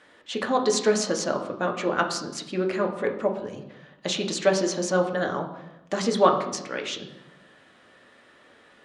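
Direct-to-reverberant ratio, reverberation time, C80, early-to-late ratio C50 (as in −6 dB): 2.5 dB, 0.95 s, 11.5 dB, 8.5 dB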